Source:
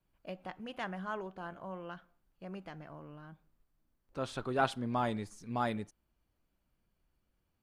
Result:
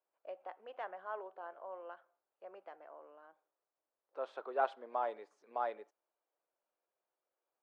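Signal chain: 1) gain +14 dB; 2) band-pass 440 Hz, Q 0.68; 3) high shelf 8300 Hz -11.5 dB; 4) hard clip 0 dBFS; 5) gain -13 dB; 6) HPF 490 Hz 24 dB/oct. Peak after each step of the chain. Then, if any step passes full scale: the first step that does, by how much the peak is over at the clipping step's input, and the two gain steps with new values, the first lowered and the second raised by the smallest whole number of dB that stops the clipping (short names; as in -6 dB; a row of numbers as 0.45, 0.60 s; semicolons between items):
-2.0, -3.5, -3.5, -3.5, -16.5, -19.0 dBFS; no overload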